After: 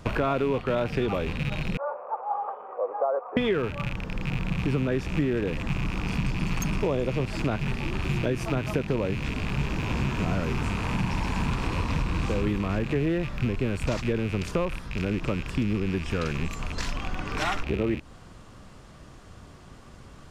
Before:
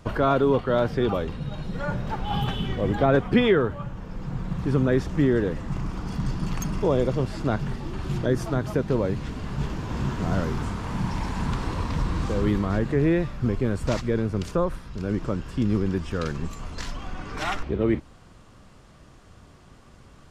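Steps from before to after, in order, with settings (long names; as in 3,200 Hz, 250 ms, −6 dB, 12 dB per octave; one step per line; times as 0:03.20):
loose part that buzzes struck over −34 dBFS, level −25 dBFS
0:01.77–0:03.37: elliptic band-pass filter 500–1,200 Hz, stop band 80 dB
downward compressor 4 to 1, threshold −26 dBFS, peak gain reduction 10 dB
level +3 dB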